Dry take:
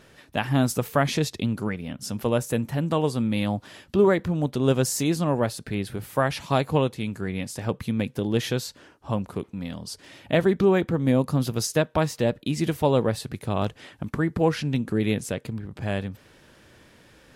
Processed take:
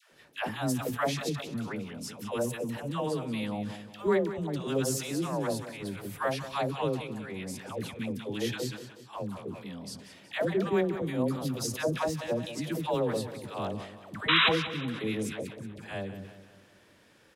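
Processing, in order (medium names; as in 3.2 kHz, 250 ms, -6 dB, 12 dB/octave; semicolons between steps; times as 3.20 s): bass shelf 110 Hz -12 dB; phase dispersion lows, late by 127 ms, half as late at 610 Hz; painted sound noise, 14.28–14.49 s, 950–4000 Hz -16 dBFS; on a send: feedback delay 184 ms, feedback 50%, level -13 dB; on the sum: decay stretcher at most 89 dB/s; trim -6.5 dB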